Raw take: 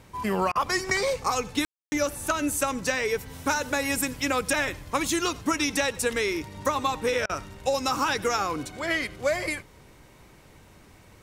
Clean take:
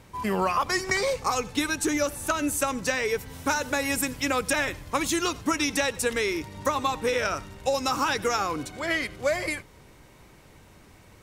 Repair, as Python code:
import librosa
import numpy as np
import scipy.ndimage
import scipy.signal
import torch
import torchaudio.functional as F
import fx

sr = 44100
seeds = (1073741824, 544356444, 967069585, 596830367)

y = fx.fix_ambience(x, sr, seeds[0], print_start_s=10.05, print_end_s=10.55, start_s=1.65, end_s=1.92)
y = fx.fix_interpolate(y, sr, at_s=(0.52, 7.26), length_ms=33.0)